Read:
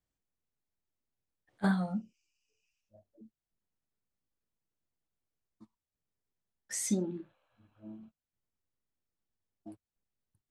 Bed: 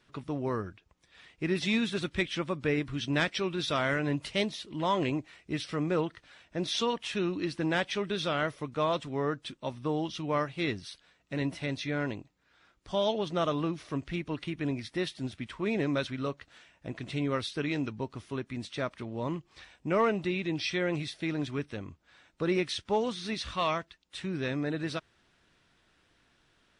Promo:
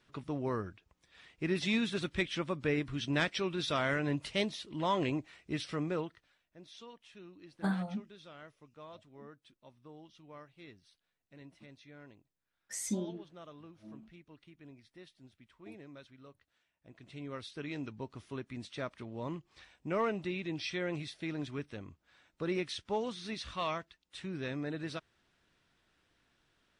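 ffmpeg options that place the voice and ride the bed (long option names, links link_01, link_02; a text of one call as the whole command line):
ffmpeg -i stem1.wav -i stem2.wav -filter_complex "[0:a]adelay=6000,volume=-4dB[link_01];[1:a]volume=13dB,afade=type=out:start_time=5.7:duration=0.69:silence=0.112202,afade=type=in:start_time=16.74:duration=1.47:silence=0.158489[link_02];[link_01][link_02]amix=inputs=2:normalize=0" out.wav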